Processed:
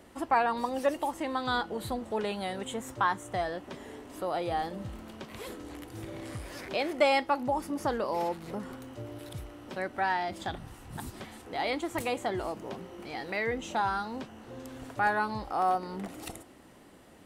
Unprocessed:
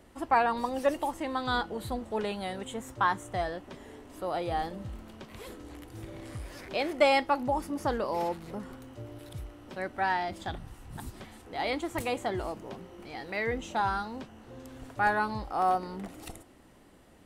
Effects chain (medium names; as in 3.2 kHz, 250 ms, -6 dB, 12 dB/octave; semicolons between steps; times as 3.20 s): bass shelf 64 Hz -11.5 dB; in parallel at 0 dB: compression, threshold -37 dBFS, peak gain reduction 17.5 dB; on the sum: trim -2.5 dB